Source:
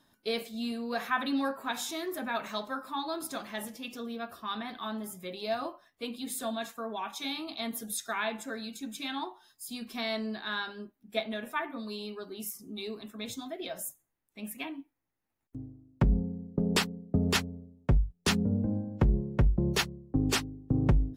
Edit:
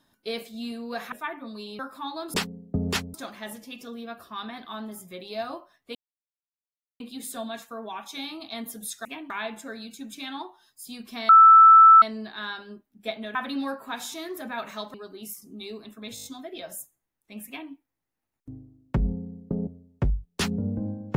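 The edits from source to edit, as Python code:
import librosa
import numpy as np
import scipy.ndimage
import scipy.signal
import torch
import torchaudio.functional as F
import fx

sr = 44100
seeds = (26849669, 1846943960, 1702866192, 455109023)

y = fx.edit(x, sr, fx.swap(start_s=1.12, length_s=1.59, other_s=11.44, other_length_s=0.67),
    fx.insert_silence(at_s=6.07, length_s=1.05),
    fx.insert_tone(at_s=10.11, length_s=0.73, hz=1320.0, db=-8.5),
    fx.stutter(start_s=13.32, slice_s=0.02, count=6),
    fx.duplicate(start_s=14.54, length_s=0.25, to_s=8.12),
    fx.move(start_s=16.74, length_s=0.8, to_s=3.26), tone=tone)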